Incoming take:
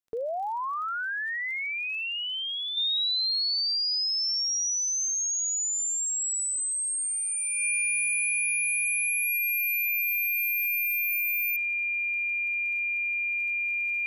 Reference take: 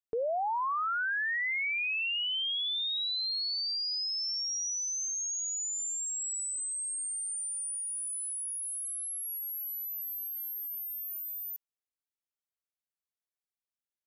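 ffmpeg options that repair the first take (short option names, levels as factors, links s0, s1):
-af "adeclick=t=4,bandreject=f=2400:w=30,asetnsamples=n=441:p=0,asendcmd='2.77 volume volume -6dB',volume=1"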